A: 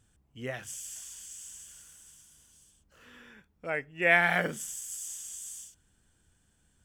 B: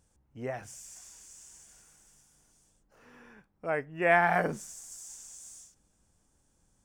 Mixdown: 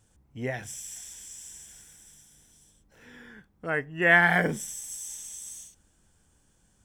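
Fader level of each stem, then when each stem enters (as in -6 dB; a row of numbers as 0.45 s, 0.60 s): -0.5 dB, +2.5 dB; 0.00 s, 0.00 s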